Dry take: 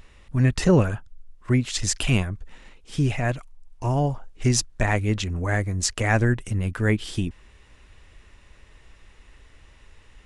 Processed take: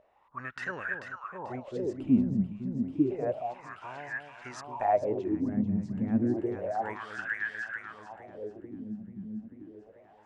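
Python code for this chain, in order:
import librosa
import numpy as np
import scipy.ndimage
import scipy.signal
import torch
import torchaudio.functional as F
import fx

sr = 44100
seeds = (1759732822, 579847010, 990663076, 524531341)

y = fx.echo_alternate(x, sr, ms=220, hz=910.0, feedback_pct=85, wet_db=-5.5)
y = fx.wah_lfo(y, sr, hz=0.3, low_hz=200.0, high_hz=1700.0, q=10.0)
y = y * 10.0 ** (8.5 / 20.0)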